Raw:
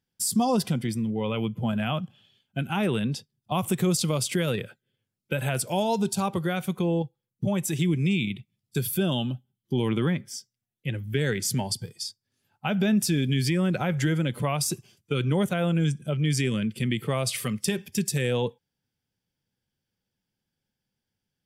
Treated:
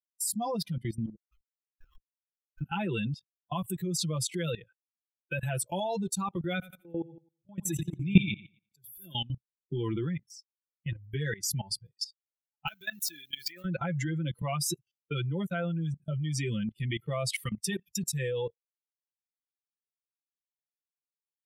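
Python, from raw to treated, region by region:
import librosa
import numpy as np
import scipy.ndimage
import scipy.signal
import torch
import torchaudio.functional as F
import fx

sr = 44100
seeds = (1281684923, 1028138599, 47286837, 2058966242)

y = fx.chain(x, sr, fx.ellip_bandpass(low_hz=1300.0, high_hz=9200.0, order=3, stop_db=40),
    fx.level_steps(step_db=19),
    fx.schmitt(flips_db=-41.0), at=(1.15, 2.61))
y = fx.chain(y, sr, fx.auto_swell(attack_ms=289.0),
    fx.echo_feedback(ms=87, feedback_pct=48, wet_db=-4.0), at=(6.53, 9.15))
y = fx.chain(y, sr, fx.crossing_spikes(level_db=-25.5),
    fx.highpass(hz=1300.0, slope=6),
    fx.high_shelf(hz=4100.0, db=-4.5), at=(12.67, 13.65))
y = fx.bin_expand(y, sr, power=2.0)
y = y + 0.86 * np.pad(y, (int(5.9 * sr / 1000.0), 0))[:len(y)]
y = fx.level_steps(y, sr, step_db=18)
y = F.gain(torch.from_numpy(y), 5.0).numpy()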